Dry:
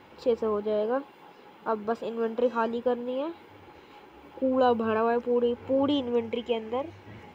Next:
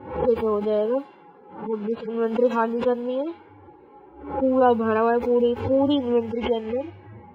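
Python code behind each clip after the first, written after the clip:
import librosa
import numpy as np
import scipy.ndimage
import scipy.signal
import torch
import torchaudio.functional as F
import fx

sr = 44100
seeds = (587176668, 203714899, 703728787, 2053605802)

y = fx.hpss_only(x, sr, part='harmonic')
y = fx.env_lowpass(y, sr, base_hz=890.0, full_db=-24.5)
y = fx.pre_swell(y, sr, db_per_s=97.0)
y = y * 10.0 ** (5.0 / 20.0)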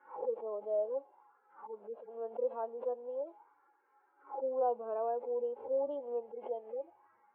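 y = fx.dynamic_eq(x, sr, hz=1600.0, q=1.9, threshold_db=-42.0, ratio=4.0, max_db=-5)
y = fx.auto_wah(y, sr, base_hz=610.0, top_hz=1700.0, q=3.9, full_db=-25.0, direction='down')
y = fx.bandpass_q(y, sr, hz=930.0, q=0.52)
y = y * 10.0 ** (-6.5 / 20.0)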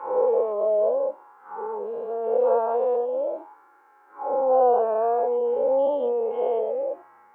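y = fx.spec_dilate(x, sr, span_ms=240)
y = y * 10.0 ** (8.5 / 20.0)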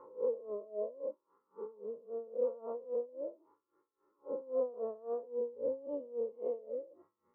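y = np.convolve(x, np.full(56, 1.0 / 56))[:len(x)]
y = y * 10.0 ** (-20 * (0.5 - 0.5 * np.cos(2.0 * np.pi * 3.7 * np.arange(len(y)) / sr)) / 20.0)
y = y * 10.0 ** (-2.5 / 20.0)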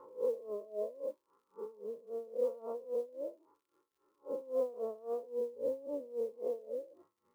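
y = fx.dmg_crackle(x, sr, seeds[0], per_s=110.0, level_db=-68.0)
y = fx.mod_noise(y, sr, seeds[1], snr_db=35)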